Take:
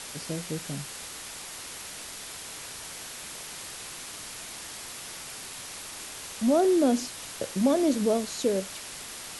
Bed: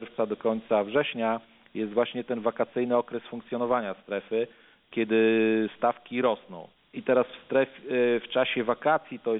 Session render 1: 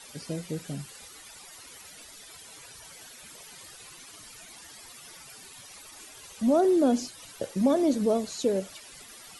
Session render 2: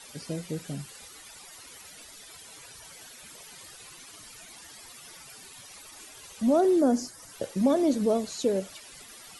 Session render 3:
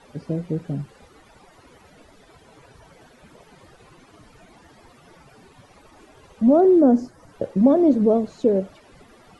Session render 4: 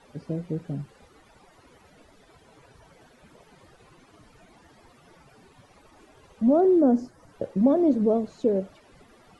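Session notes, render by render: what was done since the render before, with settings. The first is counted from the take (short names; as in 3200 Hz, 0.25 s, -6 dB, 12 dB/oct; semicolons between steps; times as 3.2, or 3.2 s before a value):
denoiser 14 dB, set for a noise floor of -41 dBFS
6.81–7.32 band shelf 3100 Hz -10.5 dB 1 oct
LPF 3300 Hz 6 dB/oct; tilt shelf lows +9 dB, about 1500 Hz
gain -4.5 dB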